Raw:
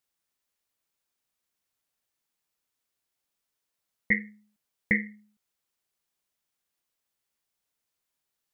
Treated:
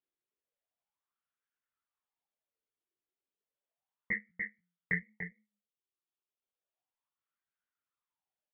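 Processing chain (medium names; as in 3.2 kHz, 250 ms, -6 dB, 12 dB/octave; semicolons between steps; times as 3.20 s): reverb removal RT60 1.4 s; 4.29–5.01 s: frequency shift -34 Hz; chorus 2.5 Hz, delay 17 ms, depth 5.7 ms; on a send: delay 292 ms -7 dB; on the sum: resampled via 8 kHz; sweeping bell 0.33 Hz 350–1500 Hz +15 dB; trim -8 dB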